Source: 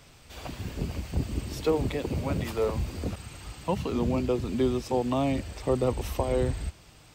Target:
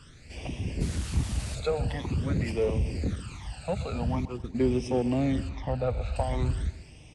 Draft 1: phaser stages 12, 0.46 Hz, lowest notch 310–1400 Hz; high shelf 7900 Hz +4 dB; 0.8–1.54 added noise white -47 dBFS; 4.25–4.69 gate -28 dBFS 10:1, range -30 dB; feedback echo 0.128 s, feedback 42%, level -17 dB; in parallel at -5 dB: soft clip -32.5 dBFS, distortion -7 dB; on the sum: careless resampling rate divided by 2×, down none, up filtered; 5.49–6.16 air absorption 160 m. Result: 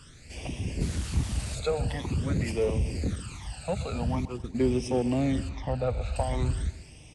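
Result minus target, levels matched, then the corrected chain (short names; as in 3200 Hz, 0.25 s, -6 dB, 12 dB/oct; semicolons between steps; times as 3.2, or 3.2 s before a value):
8000 Hz band +3.0 dB
phaser stages 12, 0.46 Hz, lowest notch 310–1400 Hz; high shelf 7900 Hz -6.5 dB; 0.8–1.54 added noise white -47 dBFS; 4.25–4.69 gate -28 dBFS 10:1, range -30 dB; feedback echo 0.128 s, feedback 42%, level -17 dB; in parallel at -5 dB: soft clip -32.5 dBFS, distortion -7 dB; on the sum: careless resampling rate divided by 2×, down none, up filtered; 5.49–6.16 air absorption 160 m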